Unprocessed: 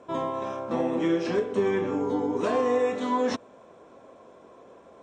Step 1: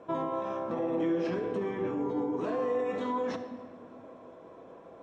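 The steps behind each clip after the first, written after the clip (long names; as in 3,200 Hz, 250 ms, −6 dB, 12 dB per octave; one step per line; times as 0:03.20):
low-pass filter 2,300 Hz 6 dB per octave
brickwall limiter −25.5 dBFS, peak gain reduction 10 dB
on a send at −6 dB: convolution reverb RT60 1.9 s, pre-delay 6 ms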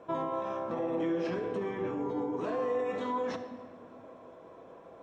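parametric band 260 Hz −3 dB 1.5 octaves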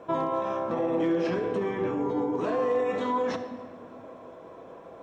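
hard clipping −24.5 dBFS, distortion −38 dB
level +5.5 dB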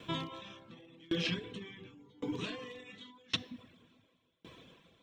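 reverb reduction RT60 0.69 s
drawn EQ curve 170 Hz 0 dB, 680 Hz −19 dB, 1,400 Hz −8 dB, 3,400 Hz +14 dB, 5,200 Hz +4 dB
tremolo with a ramp in dB decaying 0.9 Hz, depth 30 dB
level +5 dB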